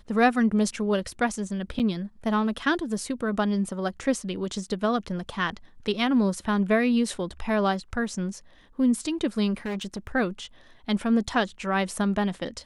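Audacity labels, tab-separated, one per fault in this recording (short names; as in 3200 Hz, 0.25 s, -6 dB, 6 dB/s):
1.790000	1.800000	gap 7.9 ms
9.650000	10.070000	clipped -27 dBFS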